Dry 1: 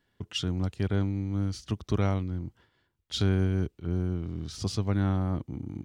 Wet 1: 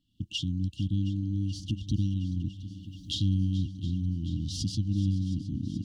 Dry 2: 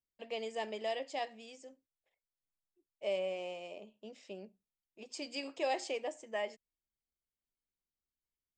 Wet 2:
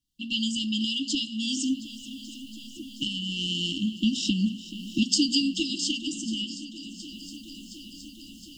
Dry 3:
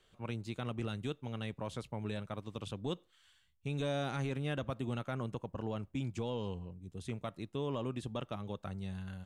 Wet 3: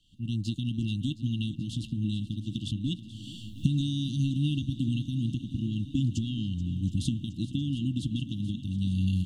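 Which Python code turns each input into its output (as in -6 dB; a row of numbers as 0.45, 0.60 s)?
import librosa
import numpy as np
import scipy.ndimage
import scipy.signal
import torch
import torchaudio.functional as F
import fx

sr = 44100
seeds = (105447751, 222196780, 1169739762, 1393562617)

y = fx.recorder_agc(x, sr, target_db=-21.5, rise_db_per_s=34.0, max_gain_db=30)
y = fx.brickwall_bandstop(y, sr, low_hz=330.0, high_hz=2700.0)
y = fx.high_shelf(y, sr, hz=8200.0, db=-9.5)
y = fx.echo_swing(y, sr, ms=717, ratio=1.5, feedback_pct=72, wet_db=-16.5)
y = y * 10.0 ** (-30 / 20.0) / np.sqrt(np.mean(np.square(y)))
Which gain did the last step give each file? -1.0, +13.0, +3.5 dB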